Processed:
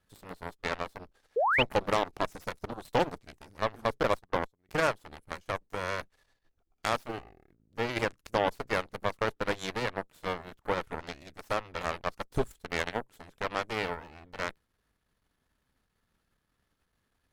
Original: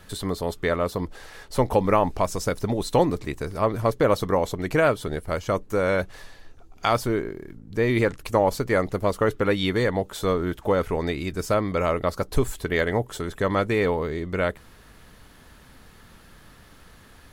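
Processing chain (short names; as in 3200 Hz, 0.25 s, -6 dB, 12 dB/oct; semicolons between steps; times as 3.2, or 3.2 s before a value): 4.03–4.69 gate -22 dBFS, range -20 dB; added harmonics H 6 -17 dB, 7 -16 dB, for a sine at -7 dBFS; 1.36–1.63 painted sound rise 420–3200 Hz -18 dBFS; gain -7.5 dB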